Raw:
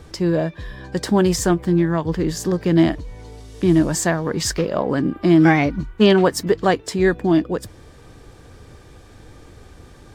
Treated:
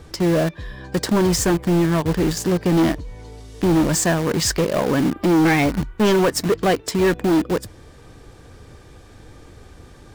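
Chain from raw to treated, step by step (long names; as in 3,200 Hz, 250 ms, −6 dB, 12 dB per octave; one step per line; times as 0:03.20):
in parallel at −4 dB: bit reduction 4 bits
on the sum: soft clipping −12.5 dBFS, distortion −9 dB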